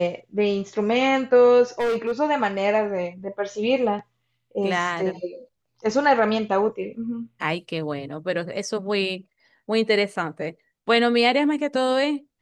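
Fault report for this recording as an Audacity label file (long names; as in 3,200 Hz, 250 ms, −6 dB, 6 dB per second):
1.790000	2.120000	clipping −20 dBFS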